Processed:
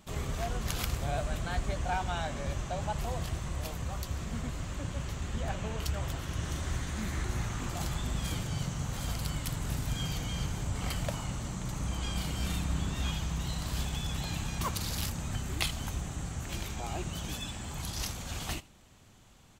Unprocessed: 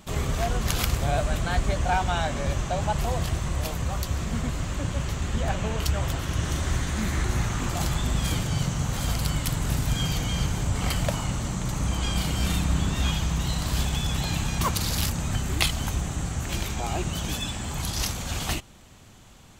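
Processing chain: 16.96–17.67 s: added noise pink -67 dBFS; on a send: delay 81 ms -21.5 dB; on the sum: trim -8 dB

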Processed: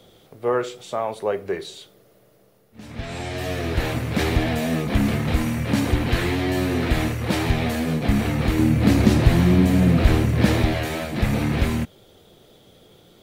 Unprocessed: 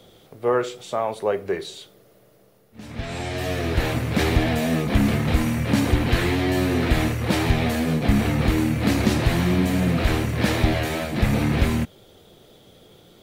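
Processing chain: 8.59–10.63 s: bass shelf 450 Hz +6.5 dB; trim -1 dB

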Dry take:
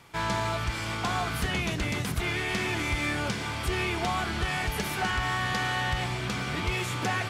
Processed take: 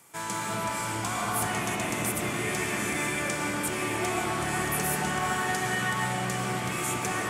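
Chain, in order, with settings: high-pass 170 Hz 12 dB/octave; resonant high shelf 5.9 kHz +12.5 dB, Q 1.5; reverberation RT60 4.3 s, pre-delay 70 ms, DRR -5 dB; trim -4.5 dB

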